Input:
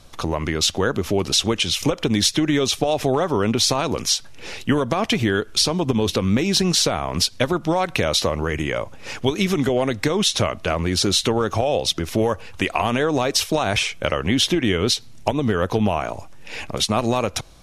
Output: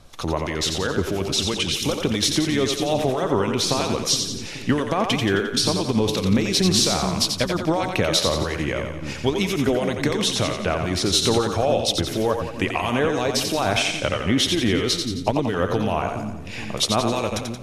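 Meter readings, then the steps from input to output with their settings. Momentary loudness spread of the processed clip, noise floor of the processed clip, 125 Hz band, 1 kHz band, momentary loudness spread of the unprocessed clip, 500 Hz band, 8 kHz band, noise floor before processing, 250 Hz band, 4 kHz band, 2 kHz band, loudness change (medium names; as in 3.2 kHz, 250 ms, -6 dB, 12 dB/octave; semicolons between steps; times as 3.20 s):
6 LU, -32 dBFS, -1.0 dB, -1.0 dB, 6 LU, -1.0 dB, -1.0 dB, -40 dBFS, -1.0 dB, -1.0 dB, -1.0 dB, -1.0 dB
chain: harmonic tremolo 3 Hz, depth 50%, crossover 2.1 kHz; two-band feedback delay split 320 Hz, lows 422 ms, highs 88 ms, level -5.5 dB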